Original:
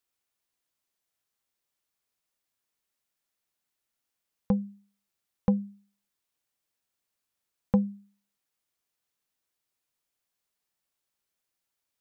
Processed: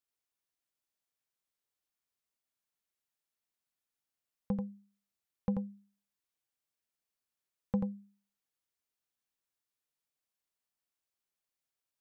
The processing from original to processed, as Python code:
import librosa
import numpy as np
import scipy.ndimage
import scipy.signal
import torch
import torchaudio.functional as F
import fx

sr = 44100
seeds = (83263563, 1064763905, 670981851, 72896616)

y = x + 10.0 ** (-4.5 / 20.0) * np.pad(x, (int(86 * sr / 1000.0), 0))[:len(x)]
y = y * 10.0 ** (-8.5 / 20.0)